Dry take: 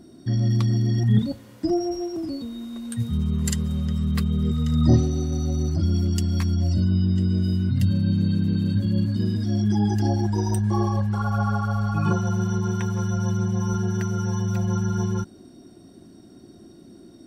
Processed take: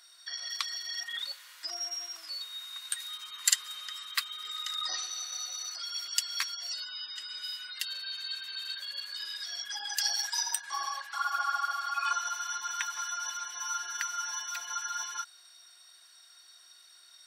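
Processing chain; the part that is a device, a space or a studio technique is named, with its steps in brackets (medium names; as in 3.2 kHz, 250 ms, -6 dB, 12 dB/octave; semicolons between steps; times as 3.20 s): 9.97–10.43 s: tilt EQ +3 dB/octave; headphones lying on a table (high-pass 1.3 kHz 24 dB/octave; peaking EQ 4 kHz +4 dB 0.51 oct); trim +5 dB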